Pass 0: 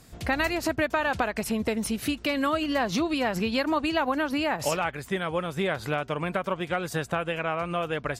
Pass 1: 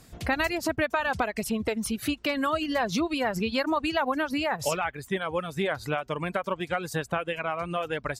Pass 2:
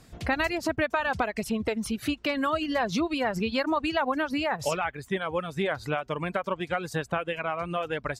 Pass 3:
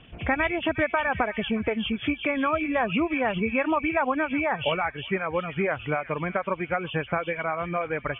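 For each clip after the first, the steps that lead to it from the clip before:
reverb reduction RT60 0.95 s
high-shelf EQ 9,000 Hz −9.5 dB
hearing-aid frequency compression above 2,200 Hz 4 to 1; delay with a high-pass on its return 362 ms, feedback 32%, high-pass 2,900 Hz, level −5 dB; level +2 dB

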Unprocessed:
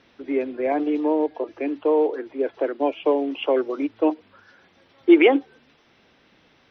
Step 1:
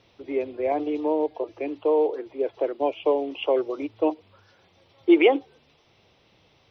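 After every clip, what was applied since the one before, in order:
graphic EQ with 15 bands 100 Hz +7 dB, 250 Hz −9 dB, 1,600 Hz −11 dB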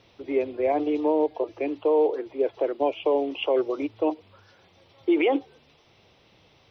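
brickwall limiter −16 dBFS, peak gain reduction 9.5 dB
level +2 dB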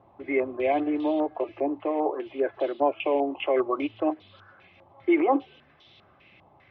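notch comb filter 470 Hz
low-pass on a step sequencer 5 Hz 920–3,600 Hz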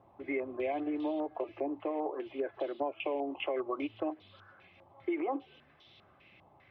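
downward compressor 6 to 1, threshold −26 dBFS, peak gain reduction 9 dB
level −4.5 dB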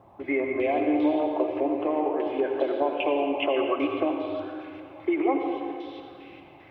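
convolution reverb RT60 2.4 s, pre-delay 74 ms, DRR 3 dB
level +8 dB

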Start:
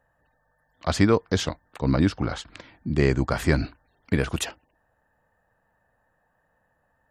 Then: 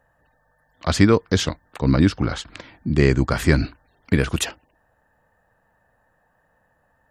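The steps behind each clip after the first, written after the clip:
dynamic equaliser 740 Hz, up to −5 dB, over −39 dBFS, Q 1.3
level +5 dB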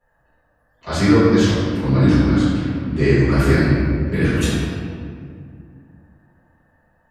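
convolution reverb RT60 2.2 s, pre-delay 4 ms, DRR −15.5 dB
level −13.5 dB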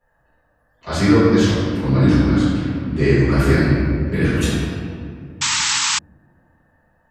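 sound drawn into the spectrogram noise, 0:05.41–0:05.99, 820–8,100 Hz −19 dBFS

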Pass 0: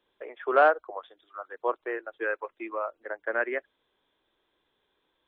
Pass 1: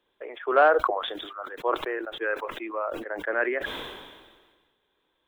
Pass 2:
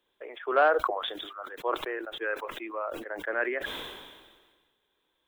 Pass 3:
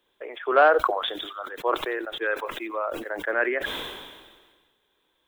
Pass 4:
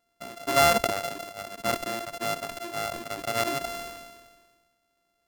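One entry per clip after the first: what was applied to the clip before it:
level that may fall only so fast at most 39 dB per second; level +1 dB
high-shelf EQ 3,800 Hz +7.5 dB; level −4 dB
delay with a high-pass on its return 90 ms, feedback 41%, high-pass 2,700 Hz, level −18 dB; level +5 dB
samples sorted by size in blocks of 64 samples; level −3 dB

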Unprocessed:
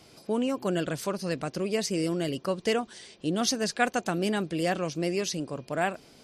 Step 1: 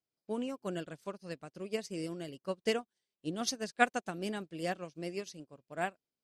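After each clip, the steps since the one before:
expander for the loud parts 2.5 to 1, over −48 dBFS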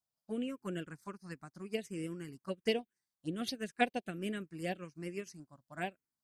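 phaser swept by the level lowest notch 370 Hz, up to 1,300 Hz, full sweep at −29.5 dBFS
level +1 dB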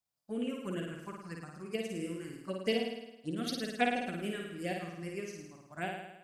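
flutter between parallel walls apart 9.2 metres, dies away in 0.94 s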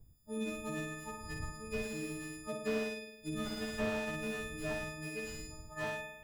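every partial snapped to a pitch grid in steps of 6 semitones
wind on the microphone 81 Hz −49 dBFS
slew-rate limiting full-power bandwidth 32 Hz
level −3 dB

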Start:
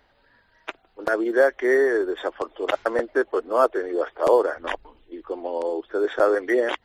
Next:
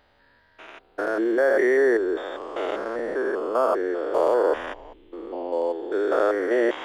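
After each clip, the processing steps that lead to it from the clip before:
spectrum averaged block by block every 200 ms
level +2.5 dB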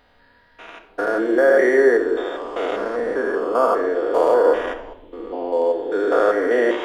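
rectangular room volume 2,100 cubic metres, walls furnished, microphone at 1.8 metres
level +3 dB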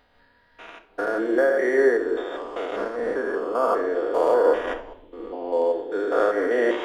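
amplitude modulation by smooth noise, depth 60%

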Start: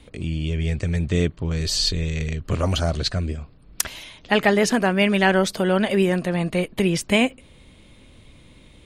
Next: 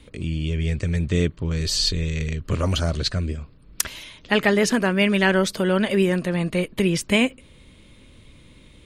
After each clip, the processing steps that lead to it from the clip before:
parametric band 740 Hz −7 dB 0.39 octaves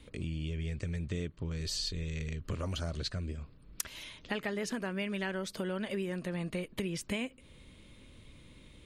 downward compressor 4 to 1, threshold −28 dBFS, peak gain reduction 12.5 dB
level −6 dB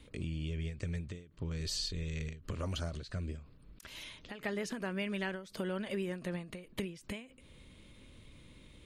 every ending faded ahead of time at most 120 dB per second
level −1 dB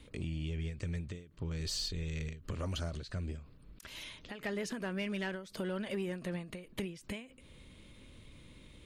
soft clipping −28.5 dBFS, distortion −21 dB
level +1 dB

